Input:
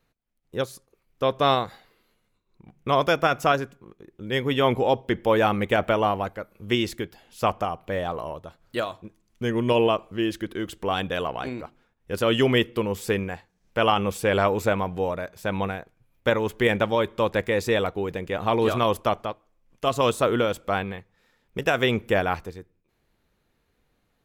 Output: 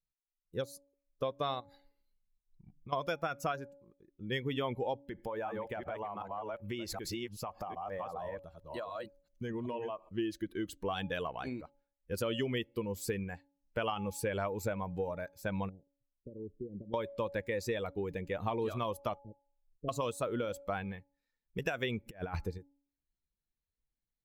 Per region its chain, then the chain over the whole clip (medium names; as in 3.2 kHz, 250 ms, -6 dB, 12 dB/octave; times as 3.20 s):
1.60–2.93 s: bass shelf 140 Hz +8 dB + compression 4:1, threshold -37 dBFS
5.08–10.09 s: chunks repeated in reverse 382 ms, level -1 dB + dynamic bell 890 Hz, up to +7 dB, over -34 dBFS, Q 0.73 + compression, threshold -28 dBFS
15.69–16.94 s: compression 16:1, threshold -23 dBFS + four-pole ladder low-pass 480 Hz, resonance 30%
19.19–19.89 s: inverse Chebyshev low-pass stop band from 950 Hz + touch-sensitive flanger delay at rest 2.5 ms, full sweep at -31 dBFS
22.06–22.58 s: treble shelf 4.3 kHz -4 dB + compressor with a negative ratio -29 dBFS, ratio -0.5
whole clip: expander on every frequency bin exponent 1.5; de-hum 281.2 Hz, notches 3; compression 6:1, threshold -32 dBFS